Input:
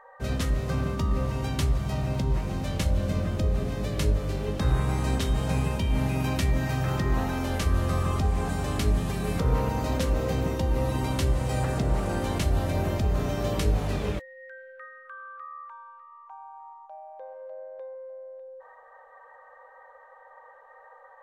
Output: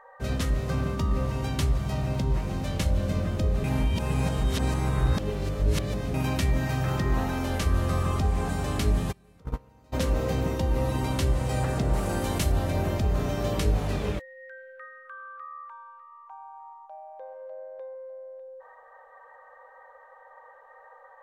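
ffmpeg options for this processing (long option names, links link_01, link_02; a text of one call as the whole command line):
ffmpeg -i in.wav -filter_complex "[0:a]asplit=3[link_01][link_02][link_03];[link_01]afade=type=out:start_time=9.11:duration=0.02[link_04];[link_02]agate=range=-29dB:threshold=-20dB:ratio=16:release=100:detection=peak,afade=type=in:start_time=9.11:duration=0.02,afade=type=out:start_time=9.92:duration=0.02[link_05];[link_03]afade=type=in:start_time=9.92:duration=0.02[link_06];[link_04][link_05][link_06]amix=inputs=3:normalize=0,asettb=1/sr,asplit=3[link_07][link_08][link_09];[link_07]atrim=end=11.934[link_10];[link_08]atrim=start=11.93:end=12.52,asetpts=PTS-STARTPTS,afade=type=in:duration=0.004:curve=qsin,afade=type=out:start_time=0.586:duration=0.004:curve=qsin,highshelf=frequency=7200:gain=8.5[link_11];[link_09]atrim=start=12.516[link_12];[link_10][link_11]acrossfade=duration=0.004:curve1=hsin:curve2=qsin[link_13];[link_13][link_12]acrossfade=duration=0.004:curve1=qsin:curve2=hsin,asplit=3[link_14][link_15][link_16];[link_14]atrim=end=3.642[link_17];[link_15]atrim=start=3.638:end=6.142,asetpts=PTS-STARTPTS,areverse[link_18];[link_16]atrim=start=6.138[link_19];[link_17][link_18]acrossfade=duration=0.004:curve1=hsin:curve2=hsin[link_20];[link_20][link_19]acrossfade=duration=0.004:curve1=hsin:curve2=hsin" out.wav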